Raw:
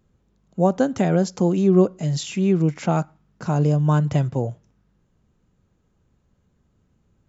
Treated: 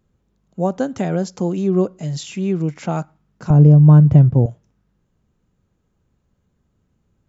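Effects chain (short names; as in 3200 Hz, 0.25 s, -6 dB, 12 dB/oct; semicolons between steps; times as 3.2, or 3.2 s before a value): 3.5–4.46 tilt -4.5 dB/oct; gain -1.5 dB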